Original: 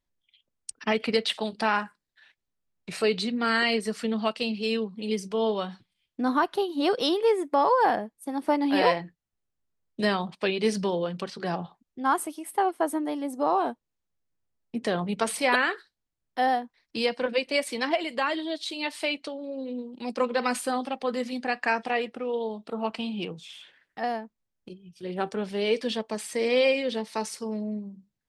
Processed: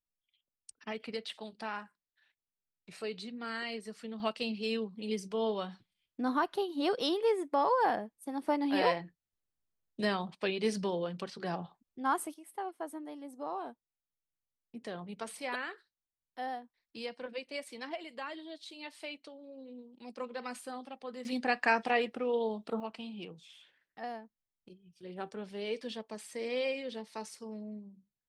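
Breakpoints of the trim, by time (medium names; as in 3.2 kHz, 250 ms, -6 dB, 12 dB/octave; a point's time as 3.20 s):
-14.5 dB
from 4.20 s -6.5 dB
from 12.34 s -14.5 dB
from 21.25 s -2 dB
from 22.80 s -11.5 dB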